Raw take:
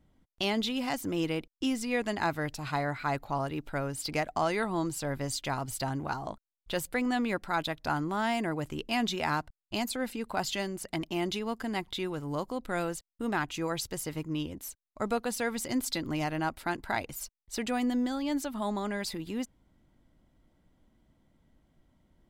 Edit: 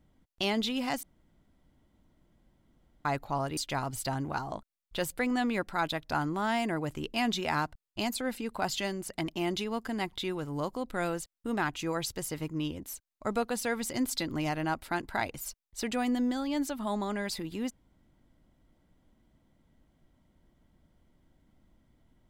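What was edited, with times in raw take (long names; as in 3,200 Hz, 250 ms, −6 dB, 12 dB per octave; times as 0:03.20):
0:01.03–0:03.05: fill with room tone
0:03.57–0:05.32: remove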